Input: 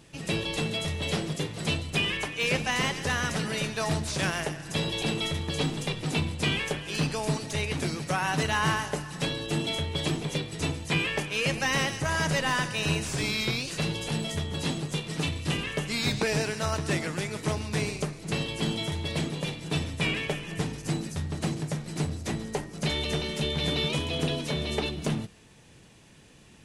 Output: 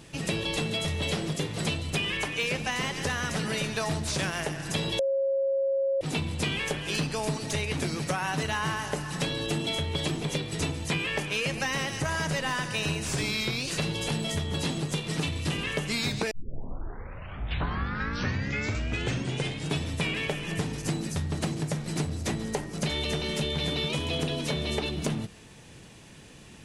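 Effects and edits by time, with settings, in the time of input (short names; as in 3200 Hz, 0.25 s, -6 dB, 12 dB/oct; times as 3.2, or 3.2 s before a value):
4.99–6.01 bleep 544 Hz -17.5 dBFS
16.31 tape start 3.54 s
whole clip: compressor, threshold -31 dBFS; gain +5 dB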